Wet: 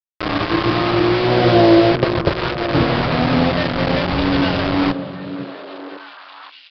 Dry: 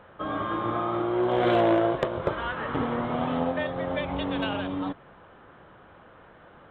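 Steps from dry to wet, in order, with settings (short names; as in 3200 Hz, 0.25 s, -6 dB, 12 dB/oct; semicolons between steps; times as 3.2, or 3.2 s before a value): low shelf 380 Hz +10 dB; bit-crush 4-bit; delay with a stepping band-pass 0.526 s, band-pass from 180 Hz, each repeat 1.4 oct, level -6 dB; on a send at -15 dB: reverb RT60 0.55 s, pre-delay 3 ms; on the sum: downsampling 11025 Hz; gain +4.5 dB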